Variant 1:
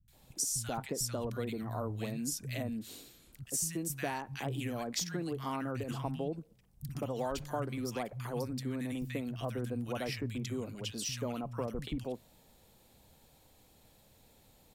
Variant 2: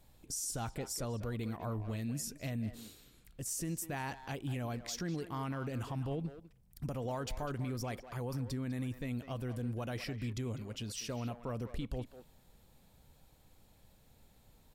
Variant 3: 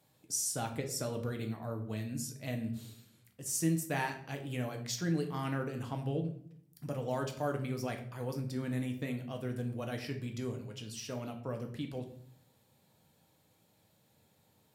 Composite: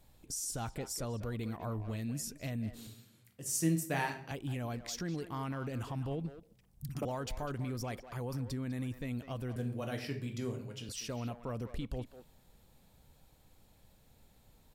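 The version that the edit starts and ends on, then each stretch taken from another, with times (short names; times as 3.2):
2
2.87–4.31 from 3
6.43–7.05 from 1
9.56–10.89 from 3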